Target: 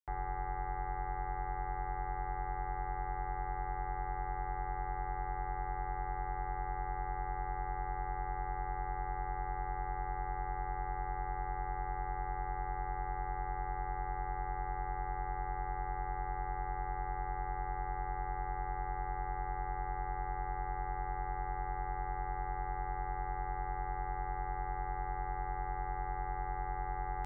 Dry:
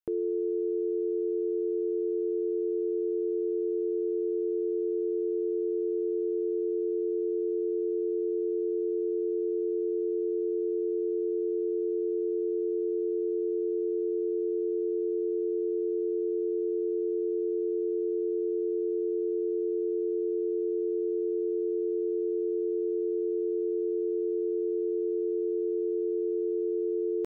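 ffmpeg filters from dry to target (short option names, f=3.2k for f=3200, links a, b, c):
-filter_complex "[0:a]aeval=exprs='0.0708*(cos(1*acos(clip(val(0)/0.0708,-1,1)))-cos(1*PI/2))+0.00891*(cos(3*acos(clip(val(0)/0.0708,-1,1)))-cos(3*PI/2))+0.01*(cos(4*acos(clip(val(0)/0.0708,-1,1)))-cos(4*PI/2))':c=same,acrossover=split=290[a][b];[a]alimiter=level_in=14dB:limit=-24dB:level=0:latency=1,volume=-14dB[c];[b]aeval=exprs='val(0)*sin(2*PI*400*n/s)':c=same[d];[c][d]amix=inputs=2:normalize=0,equalizer=f=125:t=o:w=0.33:g=11,equalizer=f=200:t=o:w=0.33:g=-12,equalizer=f=315:t=o:w=0.33:g=-10,volume=-2.5dB"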